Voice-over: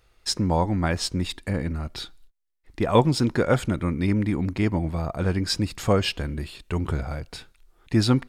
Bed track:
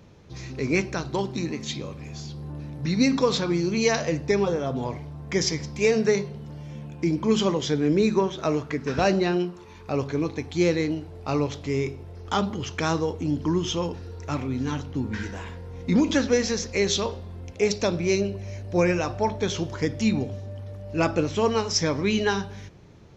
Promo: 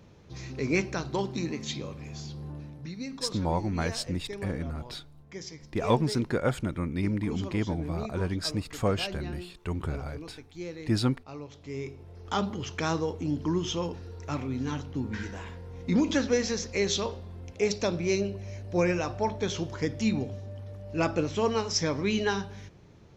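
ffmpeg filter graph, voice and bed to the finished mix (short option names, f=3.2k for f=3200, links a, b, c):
-filter_complex "[0:a]adelay=2950,volume=-6dB[a];[1:a]volume=10dB,afade=t=out:st=2.46:d=0.5:silence=0.199526,afade=t=in:st=11.47:d=0.93:silence=0.223872[b];[a][b]amix=inputs=2:normalize=0"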